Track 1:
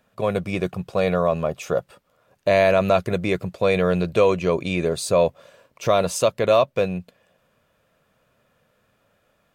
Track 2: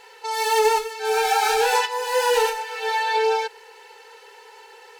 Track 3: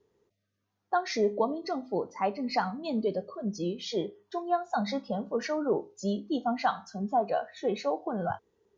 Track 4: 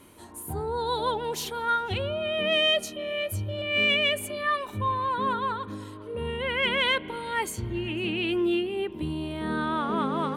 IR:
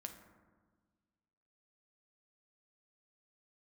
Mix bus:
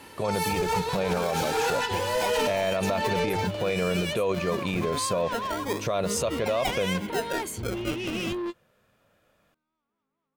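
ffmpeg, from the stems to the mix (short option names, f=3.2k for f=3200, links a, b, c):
-filter_complex "[0:a]volume=-1.5dB[a];[1:a]asoftclip=type=tanh:threshold=-20.5dB,volume=-2dB[b];[2:a]acrusher=samples=38:mix=1:aa=0.000001:lfo=1:lforange=22.8:lforate=0.28,aeval=exprs='sgn(val(0))*max(abs(val(0))-0.00282,0)':c=same,volume=-3dB,asplit=2[c][d];[3:a]asoftclip=type=tanh:threshold=-31dB,volume=2dB[e];[d]apad=whole_len=457128[f];[e][f]sidechaingate=range=-51dB:threshold=-56dB:ratio=16:detection=peak[g];[a][b][c][g]amix=inputs=4:normalize=0,alimiter=limit=-17.5dB:level=0:latency=1:release=47"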